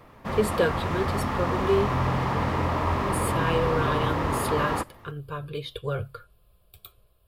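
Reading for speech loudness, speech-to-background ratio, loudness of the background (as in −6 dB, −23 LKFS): −30.0 LKFS, −3.0 dB, −27.0 LKFS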